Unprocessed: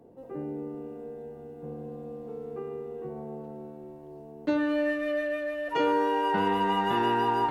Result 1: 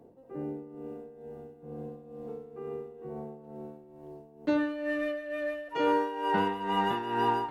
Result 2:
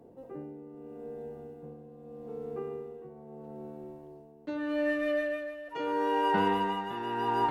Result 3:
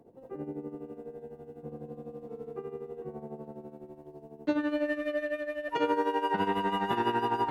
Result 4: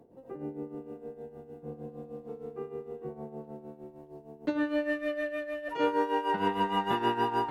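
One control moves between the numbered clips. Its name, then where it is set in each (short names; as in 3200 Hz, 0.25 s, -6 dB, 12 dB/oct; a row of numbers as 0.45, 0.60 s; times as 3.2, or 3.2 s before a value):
tremolo, rate: 2.2, 0.79, 12, 6.5 Hz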